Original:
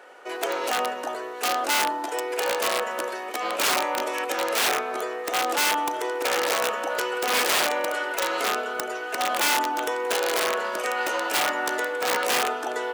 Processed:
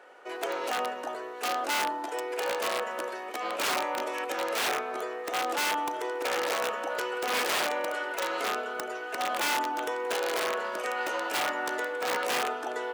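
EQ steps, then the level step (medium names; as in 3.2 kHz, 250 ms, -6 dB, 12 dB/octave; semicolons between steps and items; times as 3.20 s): treble shelf 4.4 kHz -5 dB; -4.5 dB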